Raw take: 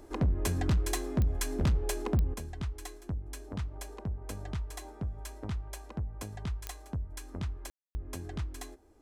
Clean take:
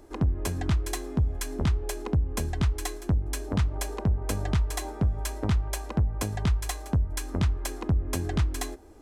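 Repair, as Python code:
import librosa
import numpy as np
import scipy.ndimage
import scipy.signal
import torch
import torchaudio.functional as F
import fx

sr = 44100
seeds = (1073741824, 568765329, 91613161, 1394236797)

y = fx.fix_declip(x, sr, threshold_db=-22.5)
y = fx.fix_declick_ar(y, sr, threshold=10.0)
y = fx.fix_ambience(y, sr, seeds[0], print_start_s=8.5, print_end_s=9.0, start_s=7.7, end_s=7.95)
y = fx.gain(y, sr, db=fx.steps((0.0, 0.0), (2.34, 11.0)))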